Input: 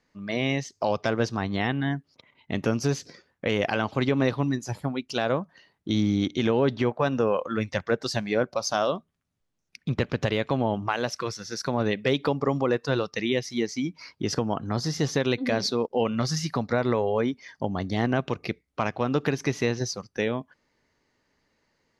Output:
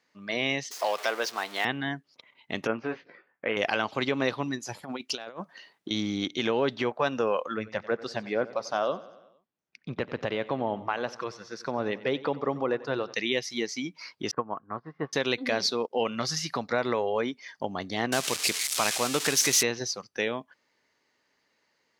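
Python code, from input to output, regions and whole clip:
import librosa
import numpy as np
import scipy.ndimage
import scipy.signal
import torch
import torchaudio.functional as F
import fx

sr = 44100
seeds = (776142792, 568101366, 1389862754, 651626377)

y = fx.chain(x, sr, fx.zero_step(step_db=-34.0),
    fx.highpass(hz=500.0, slope=12), at=(0.71, 1.65))
y = fx.chain(y, sr, fx.lowpass(hz=2300.0, slope=24),
    fx.low_shelf(hz=160.0, db=-11.5),
    fx.doubler(ms=18.0, db=-7.5), at=(2.67, 3.57))
y = fx.chain(y, sr, fx.highpass(hz=160.0, slope=12),
    fx.over_compress(threshold_db=-32.0, ratio=-0.5), at=(4.83, 5.91))
y = fx.chain(y, sr, fx.lowpass(hz=1300.0, slope=6),
    fx.echo_feedback(ms=92, feedback_pct=59, wet_db=-18.0), at=(7.54, 13.14))
y = fx.chain(y, sr, fx.lowpass(hz=1800.0, slope=24),
    fx.peak_eq(hz=1100.0, db=11.5, octaves=0.24),
    fx.upward_expand(threshold_db=-33.0, expansion=2.5), at=(14.31, 15.13))
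y = fx.chain(y, sr, fx.crossing_spikes(level_db=-17.5),
    fx.lowpass(hz=7100.0, slope=12),
    fx.high_shelf(hz=5000.0, db=10.5), at=(18.12, 19.63))
y = fx.highpass(y, sr, hz=460.0, slope=6)
y = fx.peak_eq(y, sr, hz=3100.0, db=2.5, octaves=1.5)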